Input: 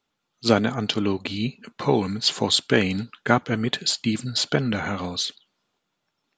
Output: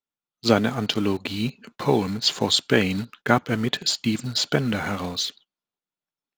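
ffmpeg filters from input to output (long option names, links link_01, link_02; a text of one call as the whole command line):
ffmpeg -i in.wav -filter_complex "[0:a]agate=range=-17dB:threshold=-46dB:ratio=16:detection=peak,asplit=2[link_01][link_02];[link_02]acrusher=bits=4:mix=0:aa=0.000001,volume=-11dB[link_03];[link_01][link_03]amix=inputs=2:normalize=0,volume=-2dB" out.wav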